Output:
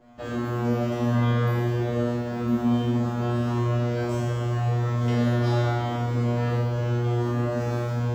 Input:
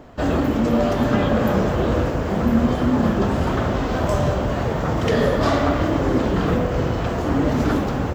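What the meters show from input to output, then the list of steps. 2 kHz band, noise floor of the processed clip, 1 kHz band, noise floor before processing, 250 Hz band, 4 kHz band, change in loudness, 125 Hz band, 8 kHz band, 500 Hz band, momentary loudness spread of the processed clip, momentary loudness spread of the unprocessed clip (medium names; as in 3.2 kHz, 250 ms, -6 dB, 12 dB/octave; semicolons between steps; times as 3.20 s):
-7.5 dB, -30 dBFS, -7.5 dB, -24 dBFS, -6.5 dB, -7.0 dB, -5.0 dB, 0.0 dB, no reading, -7.5 dB, 4 LU, 4 LU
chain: feedback comb 120 Hz, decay 1.3 s, harmonics all, mix 100%; trim +9 dB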